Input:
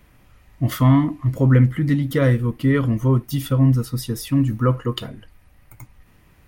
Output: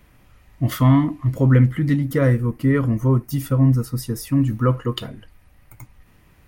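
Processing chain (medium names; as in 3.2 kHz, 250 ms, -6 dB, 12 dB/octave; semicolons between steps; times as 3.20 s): 1.96–4.42 s: peaking EQ 3.4 kHz -10 dB 0.66 oct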